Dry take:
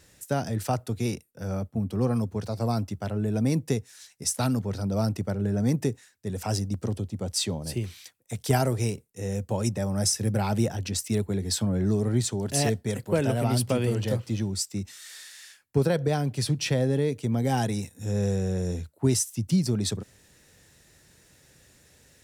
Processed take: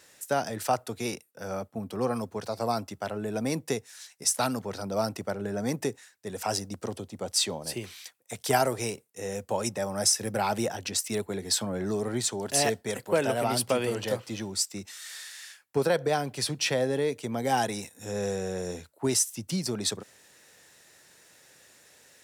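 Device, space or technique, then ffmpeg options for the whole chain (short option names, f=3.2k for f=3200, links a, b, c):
filter by subtraction: -filter_complex "[0:a]asplit=2[a][b];[b]lowpass=830,volume=-1[c];[a][c]amix=inputs=2:normalize=0,volume=2dB"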